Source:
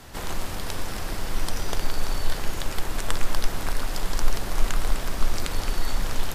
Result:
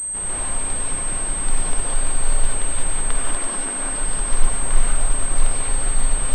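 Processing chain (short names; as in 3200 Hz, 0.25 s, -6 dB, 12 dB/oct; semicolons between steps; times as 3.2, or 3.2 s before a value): 3.16–3.81 resonant low shelf 160 Hz -12.5 dB, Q 1.5; non-linear reverb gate 0.22 s rising, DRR -4.5 dB; pulse-width modulation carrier 8300 Hz; gain -3.5 dB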